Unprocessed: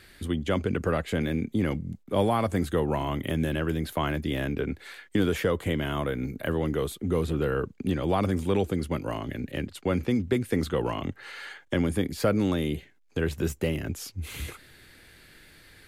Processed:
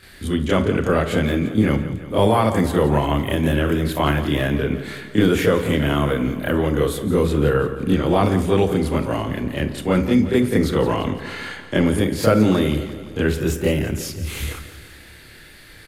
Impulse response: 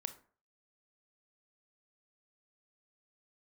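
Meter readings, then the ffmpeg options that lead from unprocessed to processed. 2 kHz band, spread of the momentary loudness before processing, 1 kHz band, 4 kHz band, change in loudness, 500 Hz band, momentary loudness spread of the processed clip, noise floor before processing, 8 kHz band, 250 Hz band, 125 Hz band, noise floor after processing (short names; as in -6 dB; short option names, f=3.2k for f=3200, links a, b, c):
+8.5 dB, 9 LU, +8.5 dB, +8.5 dB, +8.5 dB, +8.5 dB, 9 LU, -58 dBFS, +8.5 dB, +9.0 dB, +8.5 dB, -44 dBFS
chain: -filter_complex "[0:a]aecho=1:1:172|344|516|688|860|1032:0.211|0.125|0.0736|0.0434|0.0256|0.0151,asplit=2[a][b];[1:a]atrim=start_sample=2205,adelay=28[c];[b][c]afir=irnorm=-1:irlink=0,volume=8dB[d];[a][d]amix=inputs=2:normalize=0,volume=1.5dB"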